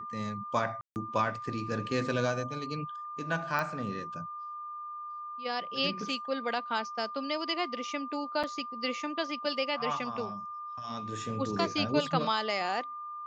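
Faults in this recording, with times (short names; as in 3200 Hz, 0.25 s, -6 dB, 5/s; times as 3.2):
tone 1200 Hz -38 dBFS
0.81–0.96 gap 0.149 s
3.59 pop -18 dBFS
8.43–8.44 gap 6.2 ms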